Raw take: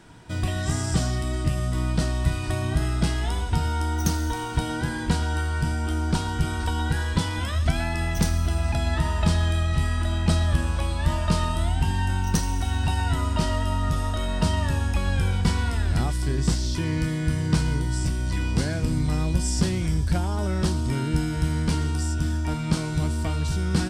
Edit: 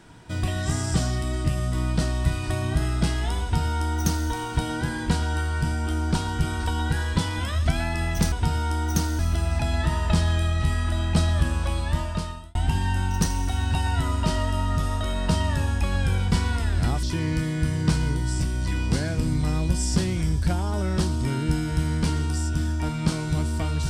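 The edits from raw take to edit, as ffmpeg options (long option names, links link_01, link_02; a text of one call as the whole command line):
ffmpeg -i in.wav -filter_complex "[0:a]asplit=5[link_01][link_02][link_03][link_04][link_05];[link_01]atrim=end=8.322[link_06];[link_02]atrim=start=3.418:end=4.292[link_07];[link_03]atrim=start=8.318:end=11.68,asetpts=PTS-STARTPTS,afade=type=out:start_time=2.622:duration=0.74[link_08];[link_04]atrim=start=11.68:end=16.162,asetpts=PTS-STARTPTS,afade=type=in:duration=0.004:curve=hsin[link_09];[link_05]atrim=start=16.678[link_10];[link_06][link_07]acrossfade=duration=0.004:curve1=hsin:curve2=hsin[link_11];[link_08][link_09]concat=n=2:v=0:a=1[link_12];[link_11][link_12]acrossfade=duration=0.004:curve1=hsin:curve2=hsin[link_13];[link_13][link_10]acrossfade=duration=0.004:curve1=hsin:curve2=hsin" out.wav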